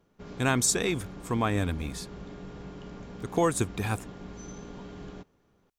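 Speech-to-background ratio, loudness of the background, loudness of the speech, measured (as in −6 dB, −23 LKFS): 15.0 dB, −43.5 LKFS, −28.5 LKFS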